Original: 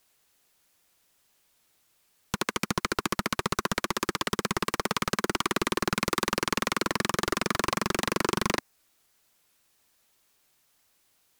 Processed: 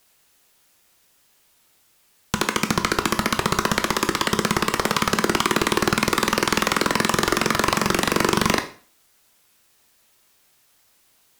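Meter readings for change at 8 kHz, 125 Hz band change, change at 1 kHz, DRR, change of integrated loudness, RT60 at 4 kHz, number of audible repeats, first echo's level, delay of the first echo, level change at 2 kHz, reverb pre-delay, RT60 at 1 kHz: +7.5 dB, +7.5 dB, +8.0 dB, 7.0 dB, +8.0 dB, 0.40 s, no echo, no echo, no echo, +8.0 dB, 6 ms, 0.40 s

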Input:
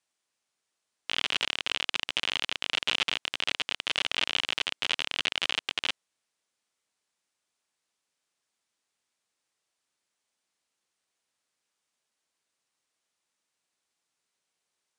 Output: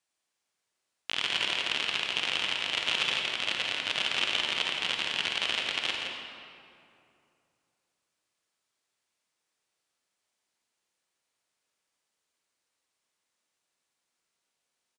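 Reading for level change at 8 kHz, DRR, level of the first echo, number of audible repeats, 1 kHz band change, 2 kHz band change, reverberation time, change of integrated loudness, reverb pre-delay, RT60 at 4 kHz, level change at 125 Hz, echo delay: 0.0 dB, -0.5 dB, -6.5 dB, 1, +1.0 dB, +1.0 dB, 2.6 s, +0.5 dB, 38 ms, 1.5 s, +1.5 dB, 167 ms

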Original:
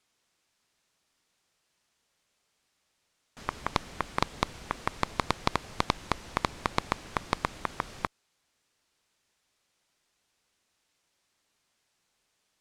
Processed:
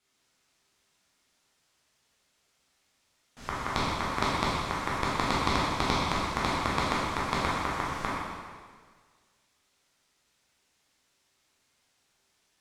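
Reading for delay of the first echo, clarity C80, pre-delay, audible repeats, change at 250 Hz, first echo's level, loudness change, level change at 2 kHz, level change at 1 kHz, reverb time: no echo, 0.0 dB, 6 ms, no echo, +5.5 dB, no echo, +4.0 dB, +4.5 dB, +4.0 dB, 1.6 s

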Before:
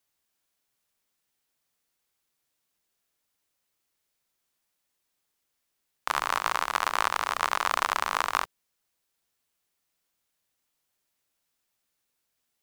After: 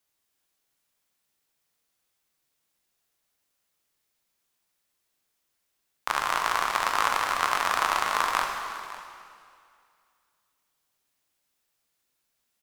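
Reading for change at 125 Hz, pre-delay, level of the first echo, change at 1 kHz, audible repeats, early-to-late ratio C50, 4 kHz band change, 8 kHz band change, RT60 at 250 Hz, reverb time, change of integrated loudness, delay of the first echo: no reading, 8 ms, -17.0 dB, +2.0 dB, 1, 3.5 dB, +2.0 dB, +2.0 dB, 2.2 s, 2.3 s, +1.5 dB, 553 ms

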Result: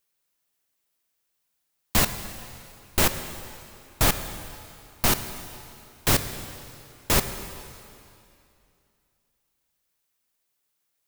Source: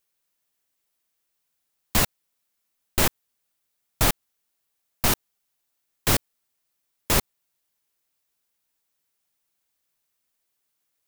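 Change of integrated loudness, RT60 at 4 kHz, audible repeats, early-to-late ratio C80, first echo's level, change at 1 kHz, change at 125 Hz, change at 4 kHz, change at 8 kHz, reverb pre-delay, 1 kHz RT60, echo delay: -1.0 dB, 2.5 s, no echo, 11.0 dB, no echo, +0.5 dB, +0.5 dB, +0.5 dB, +0.5 dB, 7 ms, 2.6 s, no echo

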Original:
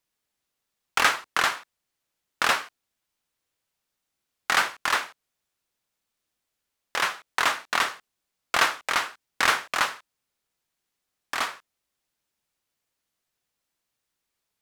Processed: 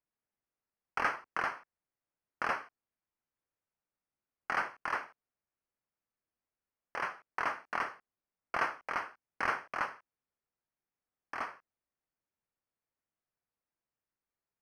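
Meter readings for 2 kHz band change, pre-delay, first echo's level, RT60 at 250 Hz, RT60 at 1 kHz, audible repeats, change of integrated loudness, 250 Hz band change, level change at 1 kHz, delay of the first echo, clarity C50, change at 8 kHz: -11.0 dB, no reverb, no echo, no reverb, no reverb, no echo, -11.5 dB, -7.5 dB, -9.0 dB, no echo, no reverb, -25.0 dB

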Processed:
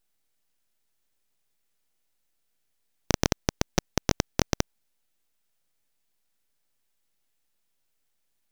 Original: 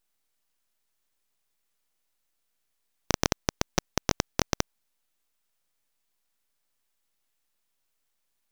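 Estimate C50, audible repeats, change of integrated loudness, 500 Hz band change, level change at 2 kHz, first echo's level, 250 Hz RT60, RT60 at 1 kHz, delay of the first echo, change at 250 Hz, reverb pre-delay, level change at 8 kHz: no reverb, no echo, +1.0 dB, +1.5 dB, 0.0 dB, no echo, no reverb, no reverb, no echo, +3.0 dB, no reverb, 0.0 dB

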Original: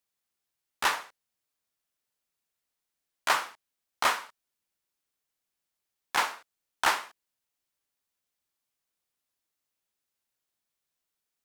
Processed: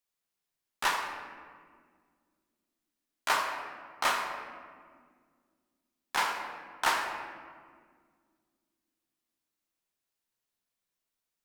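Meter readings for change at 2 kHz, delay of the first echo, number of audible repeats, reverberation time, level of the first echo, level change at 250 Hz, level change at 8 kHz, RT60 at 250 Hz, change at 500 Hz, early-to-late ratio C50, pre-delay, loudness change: -1.5 dB, no echo, no echo, 1.9 s, no echo, 0.0 dB, -2.5 dB, 3.0 s, -0.5 dB, 4.0 dB, 8 ms, -3.0 dB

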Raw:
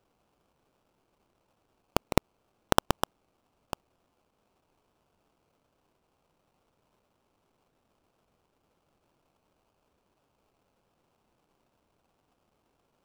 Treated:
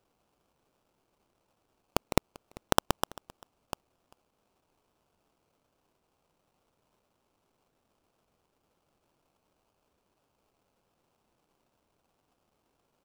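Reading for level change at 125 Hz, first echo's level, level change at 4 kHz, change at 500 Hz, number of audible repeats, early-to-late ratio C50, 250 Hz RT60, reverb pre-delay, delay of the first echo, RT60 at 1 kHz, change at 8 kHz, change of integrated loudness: -3.0 dB, -23.0 dB, -1.0 dB, -2.0 dB, 1, no reverb, no reverb, no reverb, 393 ms, no reverb, +1.0 dB, -1.5 dB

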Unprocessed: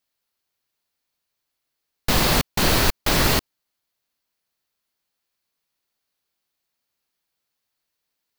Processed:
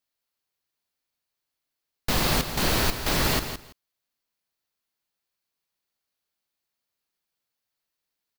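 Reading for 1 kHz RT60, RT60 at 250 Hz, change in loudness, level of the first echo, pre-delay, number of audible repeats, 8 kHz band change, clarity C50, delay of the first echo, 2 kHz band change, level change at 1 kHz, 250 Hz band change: no reverb, no reverb, -4.5 dB, -9.5 dB, no reverb, 2, -4.5 dB, no reverb, 166 ms, -4.5 dB, -4.5 dB, -4.5 dB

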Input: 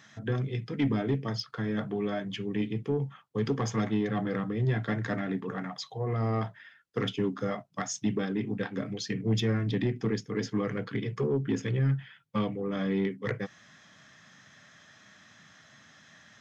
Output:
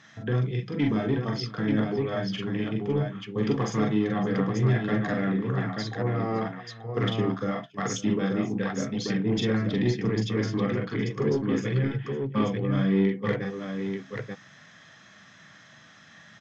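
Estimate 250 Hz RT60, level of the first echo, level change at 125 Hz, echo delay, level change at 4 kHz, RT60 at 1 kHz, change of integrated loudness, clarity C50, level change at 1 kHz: no reverb, -4.5 dB, +3.5 dB, 41 ms, +3.0 dB, no reverb, +4.0 dB, no reverb, +4.0 dB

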